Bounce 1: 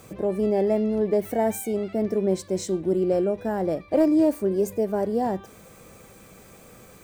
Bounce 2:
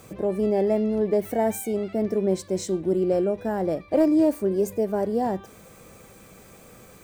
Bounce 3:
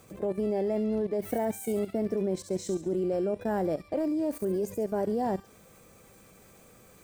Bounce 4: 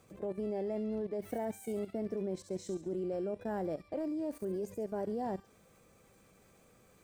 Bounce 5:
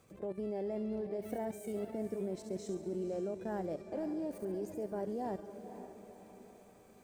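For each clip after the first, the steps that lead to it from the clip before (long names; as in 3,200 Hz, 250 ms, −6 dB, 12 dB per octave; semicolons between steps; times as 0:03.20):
no processing that can be heard
output level in coarse steps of 14 dB; delay with a high-pass on its return 69 ms, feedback 46%, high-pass 4,400 Hz, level −5 dB
high-shelf EQ 10,000 Hz −7.5 dB; level −7.5 dB
feedback delay with all-pass diffusion 506 ms, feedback 50%, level −10.5 dB; level −2 dB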